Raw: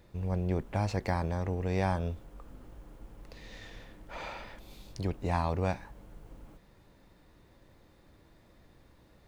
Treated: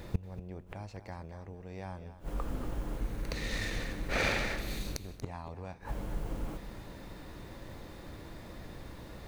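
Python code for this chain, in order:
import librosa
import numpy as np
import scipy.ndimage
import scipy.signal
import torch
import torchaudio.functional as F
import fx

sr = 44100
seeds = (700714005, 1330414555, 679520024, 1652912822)

y = fx.lower_of_two(x, sr, delay_ms=0.47, at=(2.98, 5.29))
y = fx.gate_flip(y, sr, shuts_db=-31.0, range_db=-27)
y = y + 10.0 ** (-12.5 / 20.0) * np.pad(y, (int(236 * sr / 1000.0), 0))[:len(y)]
y = F.gain(torch.from_numpy(y), 13.5).numpy()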